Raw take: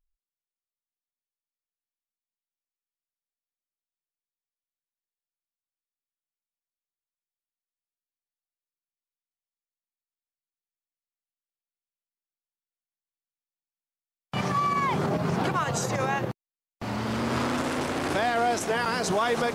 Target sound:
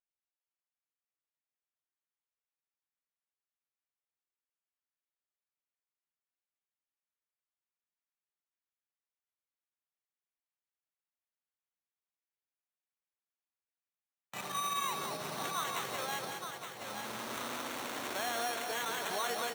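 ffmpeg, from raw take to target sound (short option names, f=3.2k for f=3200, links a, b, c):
-filter_complex "[0:a]asplit=2[a][b];[b]aecho=0:1:869:0.473[c];[a][c]amix=inputs=2:normalize=0,acrusher=samples=9:mix=1:aa=0.000001,highpass=f=890:p=1,asplit=2[d][e];[e]aecho=0:1:197|394|591|788|985:0.501|0.195|0.0762|0.0297|0.0116[f];[d][f]amix=inputs=2:normalize=0,volume=-8.5dB"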